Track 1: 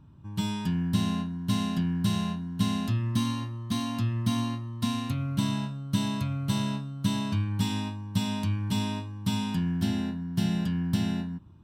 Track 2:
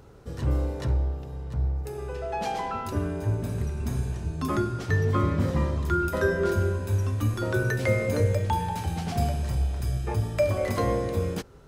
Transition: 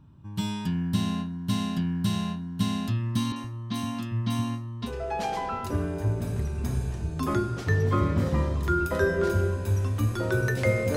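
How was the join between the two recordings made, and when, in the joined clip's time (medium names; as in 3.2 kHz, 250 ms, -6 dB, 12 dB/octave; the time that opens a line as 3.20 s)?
track 1
3.32–4.93 s: three bands offset in time mids, highs, lows 40/120 ms, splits 160/5300 Hz
4.87 s: go over to track 2 from 2.09 s, crossfade 0.12 s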